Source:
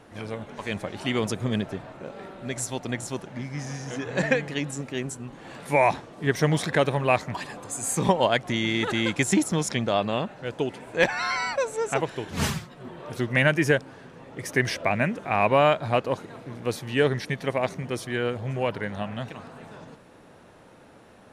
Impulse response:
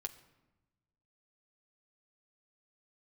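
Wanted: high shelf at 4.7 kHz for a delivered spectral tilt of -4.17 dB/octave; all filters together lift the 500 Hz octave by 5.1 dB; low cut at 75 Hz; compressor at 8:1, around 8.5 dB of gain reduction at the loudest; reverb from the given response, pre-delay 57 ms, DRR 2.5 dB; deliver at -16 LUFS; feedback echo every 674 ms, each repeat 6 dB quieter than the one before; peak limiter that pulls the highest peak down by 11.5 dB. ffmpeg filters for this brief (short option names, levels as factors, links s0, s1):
-filter_complex "[0:a]highpass=75,equalizer=f=500:t=o:g=6,highshelf=f=4700:g=5.5,acompressor=threshold=0.1:ratio=8,alimiter=limit=0.1:level=0:latency=1,aecho=1:1:674|1348|2022|2696|3370|4044:0.501|0.251|0.125|0.0626|0.0313|0.0157,asplit=2[s0][s1];[1:a]atrim=start_sample=2205,adelay=57[s2];[s1][s2]afir=irnorm=-1:irlink=0,volume=1[s3];[s0][s3]amix=inputs=2:normalize=0,volume=4.22"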